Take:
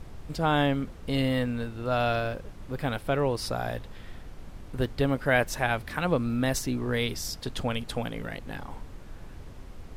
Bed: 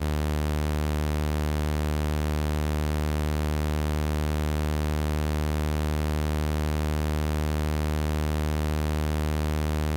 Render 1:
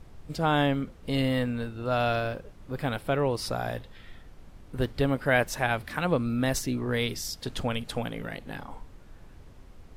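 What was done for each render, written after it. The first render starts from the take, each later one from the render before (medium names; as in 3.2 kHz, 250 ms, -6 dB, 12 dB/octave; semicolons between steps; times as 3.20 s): noise print and reduce 6 dB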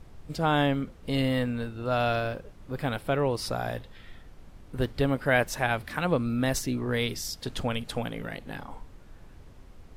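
no audible change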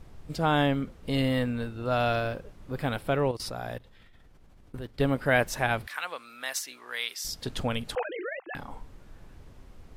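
3.31–5.00 s: level held to a coarse grid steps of 18 dB; 5.87–7.25 s: high-pass 1.2 kHz; 7.95–8.55 s: formants replaced by sine waves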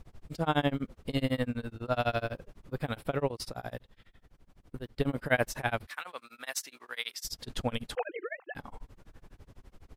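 tremolo 12 Hz, depth 98%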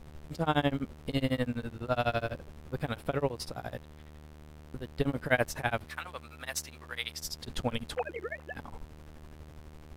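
add bed -24.5 dB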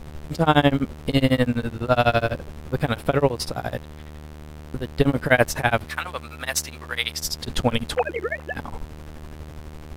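trim +11 dB; peak limiter -2 dBFS, peak gain reduction 3 dB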